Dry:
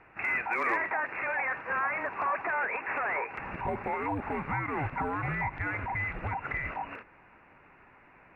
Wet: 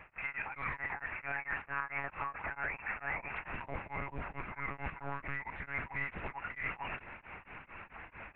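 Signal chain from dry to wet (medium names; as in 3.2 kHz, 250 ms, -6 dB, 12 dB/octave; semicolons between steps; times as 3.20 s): treble shelf 2 kHz +10.5 dB; reverse; compression 6:1, threshold -42 dBFS, peak gain reduction 19 dB; reverse; monotone LPC vocoder at 8 kHz 140 Hz; tremolo of two beating tones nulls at 4.5 Hz; trim +7 dB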